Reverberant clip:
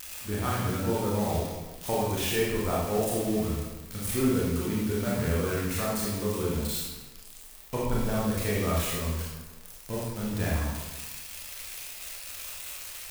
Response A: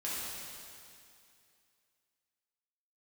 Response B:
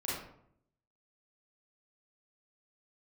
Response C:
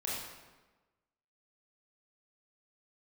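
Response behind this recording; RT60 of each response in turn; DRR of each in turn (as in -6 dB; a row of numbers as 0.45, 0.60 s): C; 2.5, 0.70, 1.2 s; -8.5, -8.0, -6.5 dB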